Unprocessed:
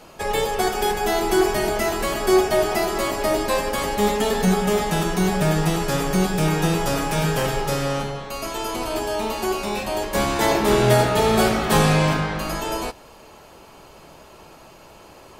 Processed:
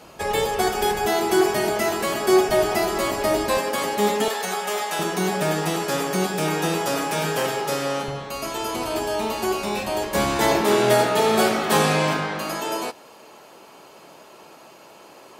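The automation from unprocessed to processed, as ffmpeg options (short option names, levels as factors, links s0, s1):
-af "asetnsamples=n=441:p=0,asendcmd='1.05 highpass f 120;2.49 highpass f 47;3.57 highpass f 190;4.28 highpass f 640;4.99 highpass f 240;8.08 highpass f 63;10.62 highpass f 220',highpass=41"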